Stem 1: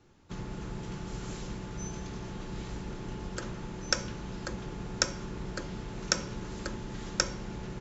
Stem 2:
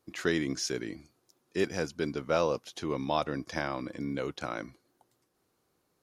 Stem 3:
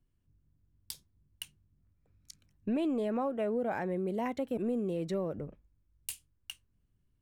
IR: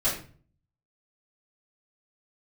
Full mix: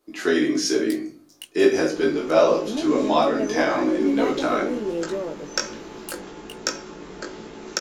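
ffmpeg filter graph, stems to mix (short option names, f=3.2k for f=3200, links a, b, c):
-filter_complex "[0:a]asoftclip=type=tanh:threshold=-6.5dB,adelay=1650,volume=3dB,asplit=2[a][b];[b]volume=-19.5dB[c];[1:a]volume=3dB,asplit=2[d][e];[e]volume=-5.5dB[f];[2:a]volume=3dB[g];[3:a]atrim=start_sample=2205[h];[c][f]amix=inputs=2:normalize=0[i];[i][h]afir=irnorm=-1:irlink=0[j];[a][d][g][j]amix=inputs=4:normalize=0,lowshelf=f=190:t=q:w=1.5:g=-13,dynaudnorm=f=110:g=9:m=5dB,flanger=delay=18:depth=2.2:speed=1.2"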